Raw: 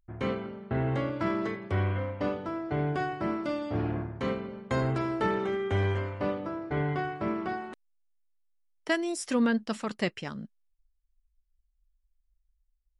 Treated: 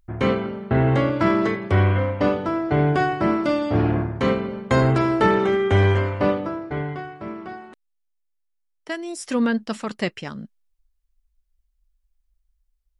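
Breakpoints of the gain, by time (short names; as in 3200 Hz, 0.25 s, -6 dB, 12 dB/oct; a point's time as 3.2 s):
6.3 s +10.5 dB
7.06 s -2 dB
8.95 s -2 dB
9.37 s +4.5 dB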